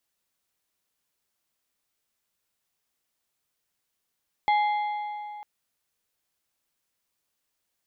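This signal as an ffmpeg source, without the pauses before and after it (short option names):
-f lavfi -i "aevalsrc='0.119*pow(10,-3*t/2.86)*sin(2*PI*836*t)+0.0422*pow(10,-3*t/2.173)*sin(2*PI*2090*t)+0.015*pow(10,-3*t/1.887)*sin(2*PI*3344*t)+0.00531*pow(10,-3*t/1.765)*sin(2*PI*4180*t)':d=0.95:s=44100"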